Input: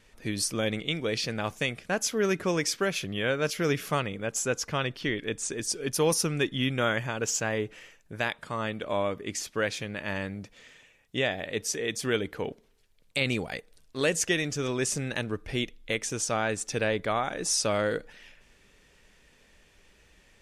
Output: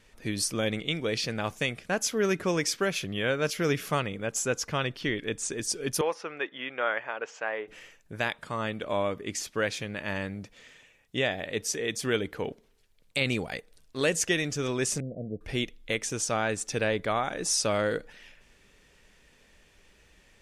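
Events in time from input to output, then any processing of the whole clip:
6.01–7.68 Butterworth band-pass 1100 Hz, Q 0.59
15–15.41 rippled Chebyshev low-pass 720 Hz, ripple 6 dB

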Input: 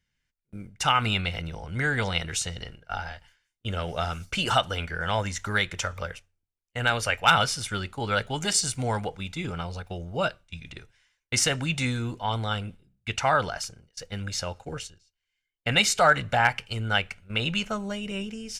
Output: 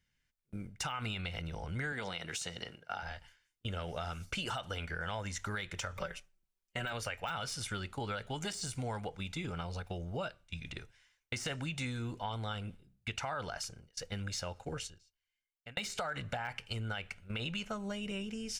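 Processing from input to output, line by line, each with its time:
1.92–3.03 HPF 170 Hz
5.97–6.93 comb 5.3 ms, depth 89%
14.85–15.77 fade out
whole clip: de-esser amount 55%; limiter -16.5 dBFS; compressor 4:1, threshold -35 dBFS; gain -1.5 dB

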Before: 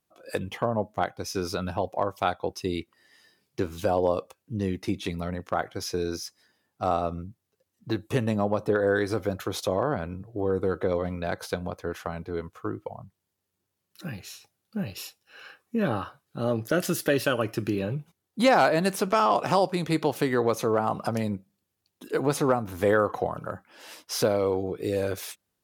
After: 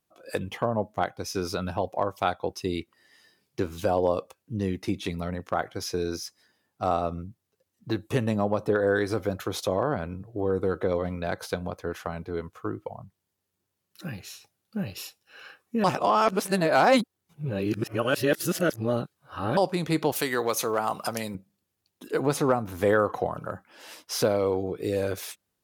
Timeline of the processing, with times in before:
15.84–19.57 reverse
20.12–21.35 tilt +3 dB/oct

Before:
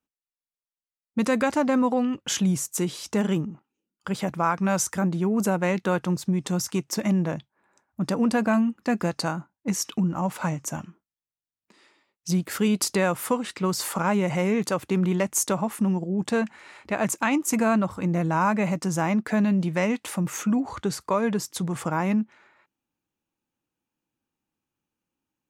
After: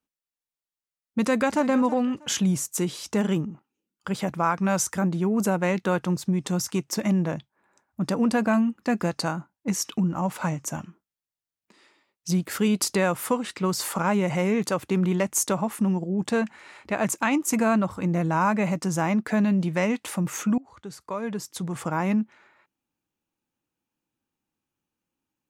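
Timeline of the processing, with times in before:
1.2–1.68 echo throw 0.32 s, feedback 25%, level -15.5 dB
20.58–22.09 fade in, from -23 dB

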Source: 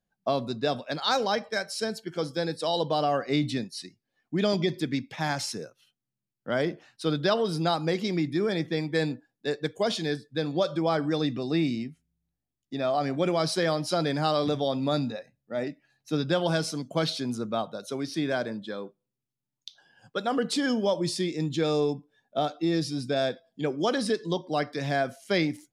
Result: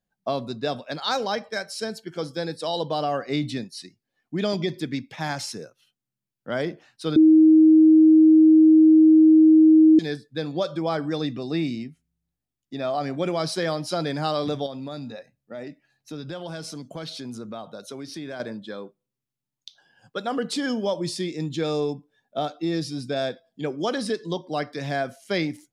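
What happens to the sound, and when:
7.16–9.99 bleep 315 Hz -10 dBFS
14.66–18.4 compressor 3:1, threshold -33 dBFS

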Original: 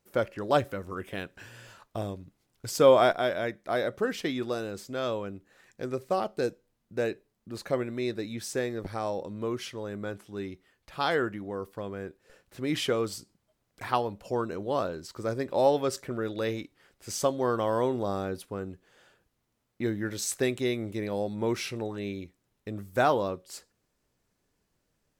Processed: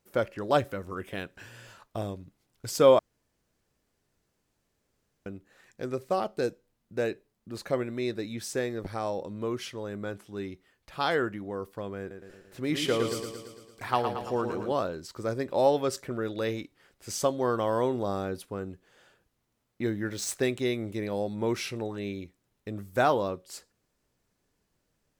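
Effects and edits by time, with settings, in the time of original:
2.99–5.26 room tone
11.99–14.72 feedback echo 0.113 s, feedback 60%, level -7 dB
20.11–20.61 median filter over 3 samples

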